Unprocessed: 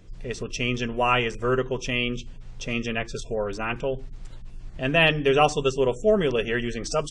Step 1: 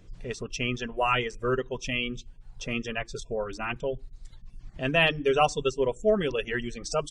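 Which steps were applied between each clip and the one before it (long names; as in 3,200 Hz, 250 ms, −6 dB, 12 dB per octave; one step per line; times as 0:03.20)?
reverb reduction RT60 1.3 s
level −2.5 dB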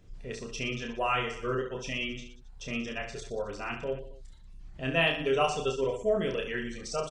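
reverse bouncing-ball delay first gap 30 ms, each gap 1.3×, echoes 5
level −5.5 dB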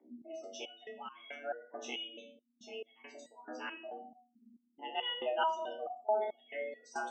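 frequency shifter +210 Hz
gate on every frequency bin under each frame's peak −20 dB strong
step-sequenced resonator 4.6 Hz 63–1,100 Hz
level +2.5 dB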